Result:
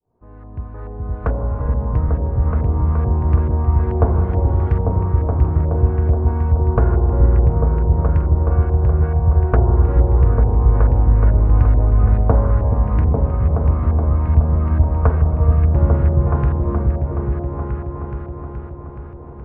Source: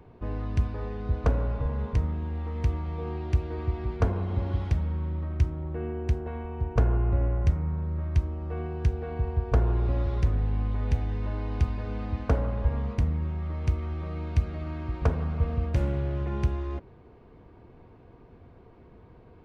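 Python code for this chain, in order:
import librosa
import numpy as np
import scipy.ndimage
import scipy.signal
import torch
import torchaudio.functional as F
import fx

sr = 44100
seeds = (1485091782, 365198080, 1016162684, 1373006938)

y = fx.fade_in_head(x, sr, length_s=1.89)
y = fx.echo_opening(y, sr, ms=423, hz=200, octaves=2, feedback_pct=70, wet_db=0)
y = fx.filter_lfo_lowpass(y, sr, shape='saw_up', hz=2.3, low_hz=760.0, high_hz=1600.0, q=1.6)
y = y * 10.0 ** (6.5 / 20.0)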